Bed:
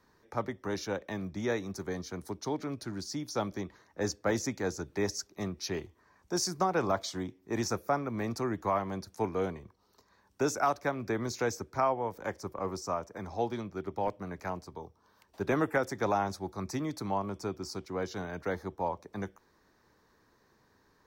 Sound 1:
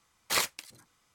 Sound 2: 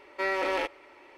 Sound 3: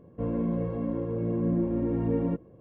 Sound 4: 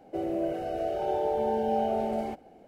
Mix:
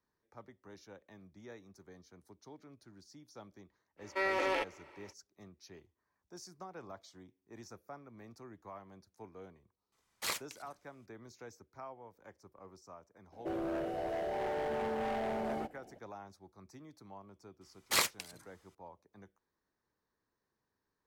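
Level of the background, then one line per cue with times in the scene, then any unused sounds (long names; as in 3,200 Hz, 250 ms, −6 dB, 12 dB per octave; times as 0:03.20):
bed −19.5 dB
0:03.97: mix in 2 −4 dB, fades 0.05 s
0:09.92: mix in 1 −9 dB
0:13.32: mix in 4 −4 dB + gain into a clipping stage and back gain 29.5 dB
0:17.61: mix in 1 −2 dB
not used: 3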